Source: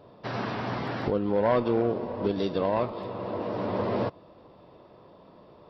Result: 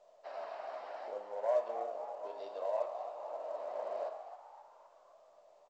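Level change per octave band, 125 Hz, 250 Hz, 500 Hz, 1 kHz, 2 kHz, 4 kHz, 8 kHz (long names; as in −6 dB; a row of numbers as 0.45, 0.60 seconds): below −40 dB, −34.0 dB, −9.5 dB, −9.0 dB, −17.0 dB, below −15 dB, can't be measured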